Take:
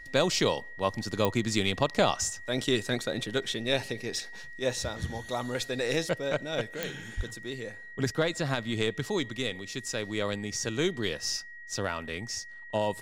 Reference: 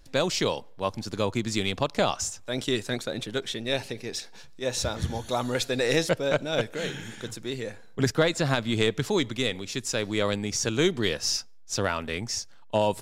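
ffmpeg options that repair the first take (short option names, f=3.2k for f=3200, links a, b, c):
-filter_complex "[0:a]adeclick=t=4,bandreject=f=1.9k:w=30,asplit=3[a][b][c];[a]afade=t=out:st=7.16:d=0.02[d];[b]highpass=f=140:w=0.5412,highpass=f=140:w=1.3066,afade=t=in:st=7.16:d=0.02,afade=t=out:st=7.28:d=0.02[e];[c]afade=t=in:st=7.28:d=0.02[f];[d][e][f]amix=inputs=3:normalize=0,asetnsamples=n=441:p=0,asendcmd='4.73 volume volume 5dB',volume=0dB"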